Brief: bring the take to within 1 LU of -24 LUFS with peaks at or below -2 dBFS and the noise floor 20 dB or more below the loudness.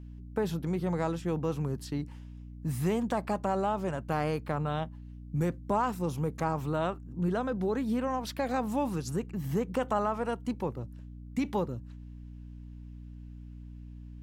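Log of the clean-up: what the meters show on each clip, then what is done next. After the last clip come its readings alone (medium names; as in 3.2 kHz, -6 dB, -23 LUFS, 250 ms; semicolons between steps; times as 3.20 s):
hum 60 Hz; highest harmonic 300 Hz; hum level -43 dBFS; loudness -32.5 LUFS; peak level -17.0 dBFS; loudness target -24.0 LUFS
-> de-hum 60 Hz, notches 5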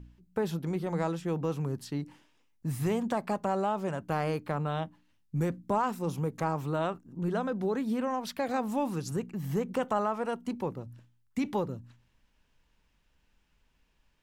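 hum not found; loudness -32.5 LUFS; peak level -17.5 dBFS; loudness target -24.0 LUFS
-> trim +8.5 dB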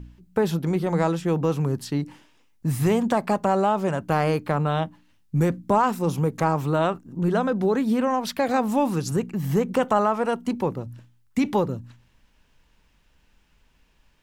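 loudness -24.0 LUFS; peak level -9.0 dBFS; noise floor -62 dBFS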